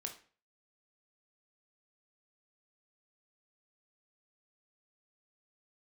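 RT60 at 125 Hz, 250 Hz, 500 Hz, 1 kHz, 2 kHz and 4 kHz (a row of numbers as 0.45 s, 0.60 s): 0.50 s, 0.45 s, 0.40 s, 0.40 s, 0.40 s, 0.35 s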